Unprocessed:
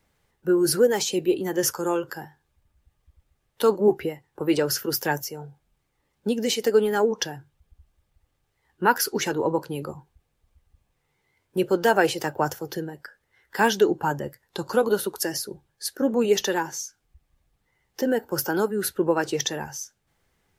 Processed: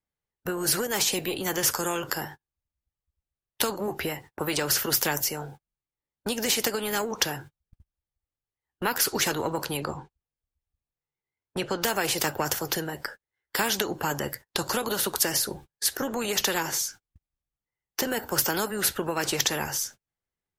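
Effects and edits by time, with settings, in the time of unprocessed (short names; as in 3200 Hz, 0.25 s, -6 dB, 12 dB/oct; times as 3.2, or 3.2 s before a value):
9.77–11.82 air absorption 80 m
whole clip: gate -47 dBFS, range -38 dB; compressor, threshold -21 dBFS; spectral compressor 2:1; gain +6.5 dB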